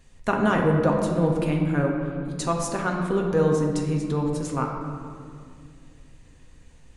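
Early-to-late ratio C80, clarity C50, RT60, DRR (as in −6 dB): 4.5 dB, 3.0 dB, 2.2 s, −0.5 dB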